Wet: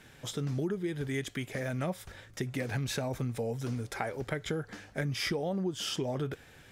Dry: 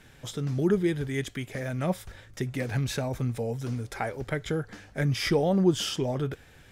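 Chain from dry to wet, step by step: bass shelf 69 Hz -10 dB; compression 12:1, threshold -29 dBFS, peak gain reduction 13 dB

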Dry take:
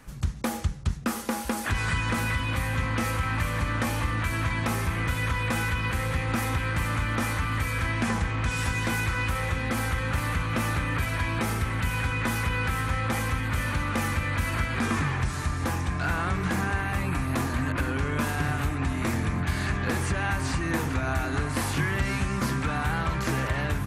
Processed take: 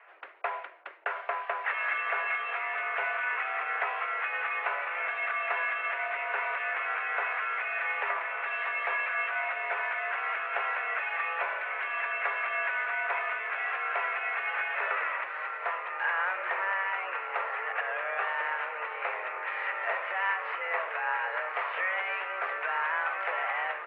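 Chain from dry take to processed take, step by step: mistuned SSB +180 Hz 430–2400 Hz; trim +1 dB

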